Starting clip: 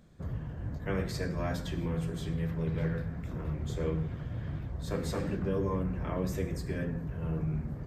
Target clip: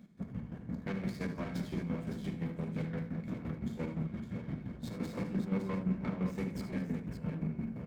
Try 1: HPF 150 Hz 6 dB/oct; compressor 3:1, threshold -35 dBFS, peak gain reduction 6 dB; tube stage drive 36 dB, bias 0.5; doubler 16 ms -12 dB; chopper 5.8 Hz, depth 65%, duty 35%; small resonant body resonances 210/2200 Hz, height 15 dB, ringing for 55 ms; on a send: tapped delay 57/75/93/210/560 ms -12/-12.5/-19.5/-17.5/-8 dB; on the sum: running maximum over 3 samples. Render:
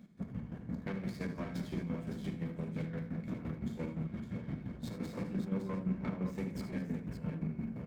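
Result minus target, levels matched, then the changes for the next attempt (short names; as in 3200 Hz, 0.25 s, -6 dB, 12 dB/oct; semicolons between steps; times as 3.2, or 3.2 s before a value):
compressor: peak gain reduction +6 dB
remove: compressor 3:1, threshold -35 dBFS, peak gain reduction 6 dB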